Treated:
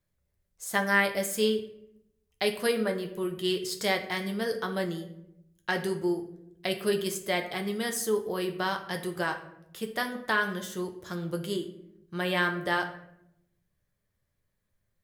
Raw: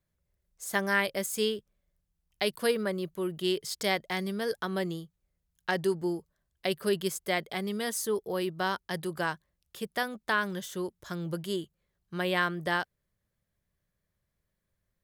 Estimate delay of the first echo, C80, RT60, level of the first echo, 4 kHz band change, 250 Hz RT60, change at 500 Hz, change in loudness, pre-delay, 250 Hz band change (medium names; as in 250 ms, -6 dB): no echo, 13.5 dB, 0.80 s, no echo, +1.0 dB, 1.1 s, +1.5 dB, +1.5 dB, 7 ms, +1.5 dB